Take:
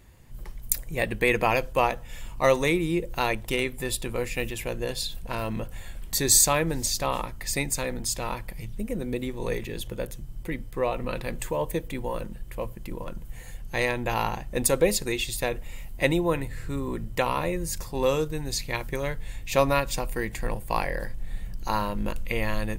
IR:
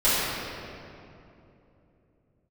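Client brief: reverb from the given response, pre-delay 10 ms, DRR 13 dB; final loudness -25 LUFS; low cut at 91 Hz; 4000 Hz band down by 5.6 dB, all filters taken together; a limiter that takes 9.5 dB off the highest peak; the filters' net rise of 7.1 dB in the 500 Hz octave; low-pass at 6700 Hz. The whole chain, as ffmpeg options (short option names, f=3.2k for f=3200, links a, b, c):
-filter_complex "[0:a]highpass=91,lowpass=6.7k,equalizer=f=500:t=o:g=8,equalizer=f=4k:t=o:g=-6.5,alimiter=limit=-12dB:level=0:latency=1,asplit=2[a][b];[1:a]atrim=start_sample=2205,adelay=10[c];[b][c]afir=irnorm=-1:irlink=0,volume=-31dB[d];[a][d]amix=inputs=2:normalize=0,volume=1dB"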